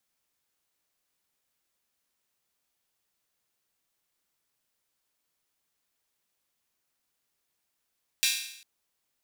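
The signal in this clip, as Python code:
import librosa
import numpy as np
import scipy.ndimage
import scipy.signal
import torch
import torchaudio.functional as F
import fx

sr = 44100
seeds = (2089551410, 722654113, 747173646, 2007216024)

y = fx.drum_hat_open(sr, length_s=0.4, from_hz=2800.0, decay_s=0.73)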